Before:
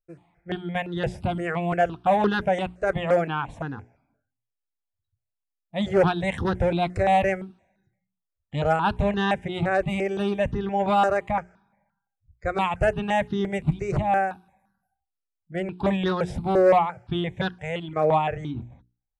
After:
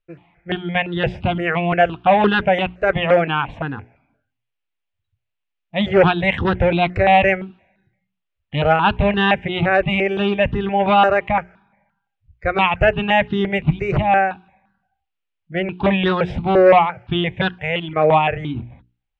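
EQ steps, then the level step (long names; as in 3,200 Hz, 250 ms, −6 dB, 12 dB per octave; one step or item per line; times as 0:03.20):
low-pass with resonance 2,800 Hz, resonance Q 2.5
+6.0 dB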